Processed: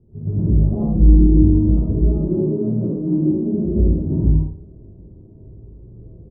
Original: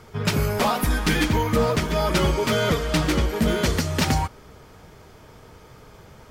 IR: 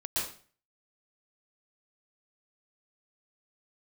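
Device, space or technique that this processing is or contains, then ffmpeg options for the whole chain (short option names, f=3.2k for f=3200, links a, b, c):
next room: -filter_complex "[0:a]asettb=1/sr,asplit=3[a][b][c];[a]atrim=end=2.074[d];[b]atrim=start=2.07:end=3.65,asetpts=PTS-STARTPTS,afade=t=in:d=0.004:c=qsin,afade=t=out:st=1.576:d=0.004:c=qsin,highpass=f=150:w=0.5412,highpass=f=150:w=1.3066[e];[c]atrim=start=3.646[f];[d][e]acrossfade=d=0.004:c1=hsin:c2=qsin[g];[g][f]acrossfade=d=0.004:c1=qsin:c2=hsin,lowpass=f=380:w=0.5412,lowpass=f=380:w=1.3066[h];[1:a]atrim=start_sample=2205[i];[h][i]afir=irnorm=-1:irlink=0,bandreject=f=460:w=12,asplit=3[j][k][l];[j]afade=t=out:st=0.81:d=0.02[m];[k]aecho=1:1:5.9:0.74,afade=t=in:st=0.81:d=0.02,afade=t=out:st=1.21:d=0.02[n];[l]afade=t=in:st=1.21:d=0.02[o];[m][n][o]amix=inputs=3:normalize=0,aecho=1:1:52|78:0.562|0.631,volume=-1dB"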